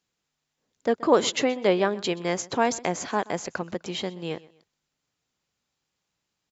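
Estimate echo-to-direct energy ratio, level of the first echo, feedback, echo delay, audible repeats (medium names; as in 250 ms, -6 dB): -20.5 dB, -21.0 dB, 33%, 127 ms, 2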